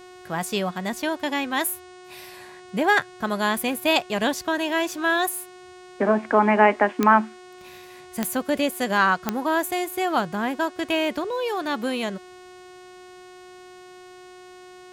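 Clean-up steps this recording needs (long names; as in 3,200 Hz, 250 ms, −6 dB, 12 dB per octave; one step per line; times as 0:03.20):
click removal
hum removal 364.7 Hz, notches 26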